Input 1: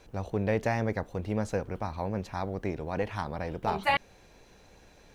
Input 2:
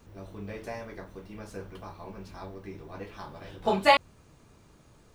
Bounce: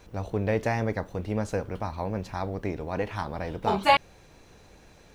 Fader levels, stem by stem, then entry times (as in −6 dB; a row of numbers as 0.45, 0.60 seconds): +1.5, −2.5 decibels; 0.00, 0.00 seconds